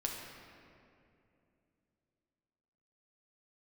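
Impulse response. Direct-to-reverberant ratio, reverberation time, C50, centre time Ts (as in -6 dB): -0.5 dB, 2.7 s, 1.5 dB, 91 ms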